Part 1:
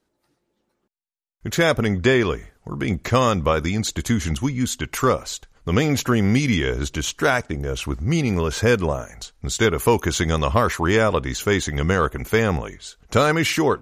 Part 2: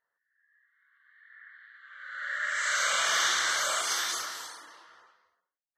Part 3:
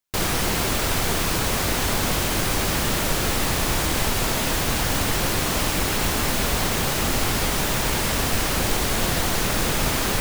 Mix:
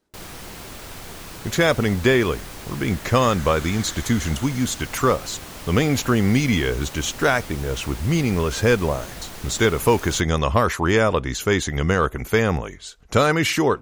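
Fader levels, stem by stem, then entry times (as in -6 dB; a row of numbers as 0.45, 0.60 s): 0.0, -13.0, -14.5 dB; 0.00, 0.65, 0.00 s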